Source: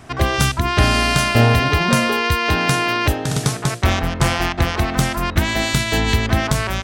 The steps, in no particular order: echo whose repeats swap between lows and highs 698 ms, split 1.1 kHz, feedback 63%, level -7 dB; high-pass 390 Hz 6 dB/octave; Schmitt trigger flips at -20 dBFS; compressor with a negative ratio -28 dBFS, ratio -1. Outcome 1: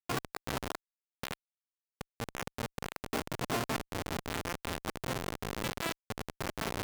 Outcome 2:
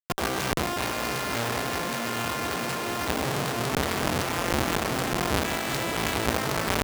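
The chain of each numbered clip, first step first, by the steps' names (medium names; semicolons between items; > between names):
echo whose repeats swap between lows and highs > compressor with a negative ratio > Schmitt trigger > high-pass; echo whose repeats swap between lows and highs > Schmitt trigger > high-pass > compressor with a negative ratio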